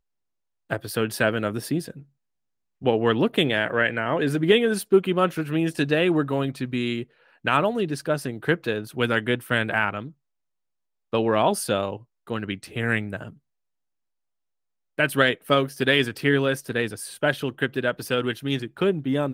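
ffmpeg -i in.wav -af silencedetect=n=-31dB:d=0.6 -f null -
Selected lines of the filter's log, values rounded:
silence_start: 0.00
silence_end: 0.70 | silence_duration: 0.70
silence_start: 1.91
silence_end: 2.84 | silence_duration: 0.93
silence_start: 10.08
silence_end: 11.13 | silence_duration: 1.05
silence_start: 13.29
silence_end: 14.99 | silence_duration: 1.70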